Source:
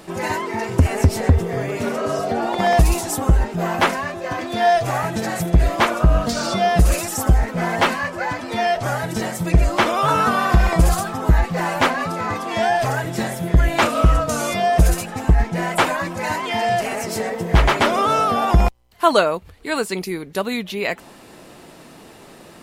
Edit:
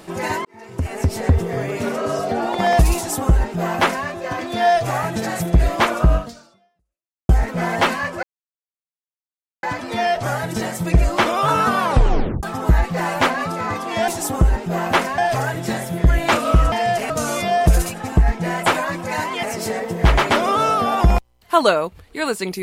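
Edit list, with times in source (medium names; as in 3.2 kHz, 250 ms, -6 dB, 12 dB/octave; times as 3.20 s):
0.45–1.41 s: fade in
2.96–4.06 s: copy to 12.68 s
6.14–7.29 s: fade out exponential
8.23 s: insert silence 1.40 s
10.39 s: tape stop 0.64 s
16.55–16.93 s: move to 14.22 s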